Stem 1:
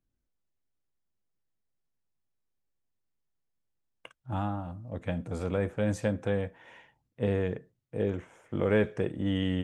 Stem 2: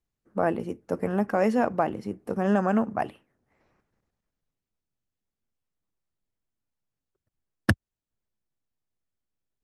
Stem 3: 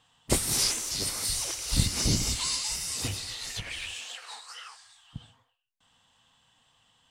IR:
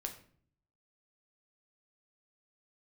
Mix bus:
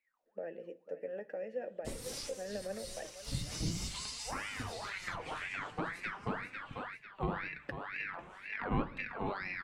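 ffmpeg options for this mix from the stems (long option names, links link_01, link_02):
-filter_complex "[0:a]aeval=exprs='val(0)*sin(2*PI*1400*n/s+1400*0.6/2*sin(2*PI*2*n/s))':channel_layout=same,volume=1.5dB,asplit=3[link_01][link_02][link_03];[link_02]volume=-3.5dB[link_04];[link_03]volume=-7.5dB[link_05];[1:a]asplit=3[link_06][link_07][link_08];[link_06]bandpass=frequency=530:width_type=q:width=8,volume=0dB[link_09];[link_07]bandpass=frequency=1840:width_type=q:width=8,volume=-6dB[link_10];[link_08]bandpass=frequency=2480:width_type=q:width=8,volume=-9dB[link_11];[link_09][link_10][link_11]amix=inputs=3:normalize=0,highshelf=frequency=3700:gain=8.5,volume=-1dB,asplit=4[link_12][link_13][link_14][link_15];[link_13]volume=-8.5dB[link_16];[link_14]volume=-13.5dB[link_17];[2:a]adelay=1550,volume=-7dB,asplit=2[link_18][link_19];[link_19]volume=-3.5dB[link_20];[link_15]apad=whole_len=381802[link_21];[link_18][link_21]sidechaincompress=threshold=-49dB:ratio=8:attack=16:release=715[link_22];[3:a]atrim=start_sample=2205[link_23];[link_04][link_16][link_20]amix=inputs=3:normalize=0[link_24];[link_24][link_23]afir=irnorm=-1:irlink=0[link_25];[link_05][link_17]amix=inputs=2:normalize=0,aecho=0:1:495|990|1485|1980:1|0.24|0.0576|0.0138[link_26];[link_01][link_12][link_22][link_25][link_26]amix=inputs=5:normalize=0,highshelf=frequency=6500:gain=-6.5,acrossover=split=320[link_27][link_28];[link_28]acompressor=threshold=-35dB:ratio=4[link_29];[link_27][link_29]amix=inputs=2:normalize=0,flanger=delay=3.4:depth=3.9:regen=48:speed=0.45:shape=triangular"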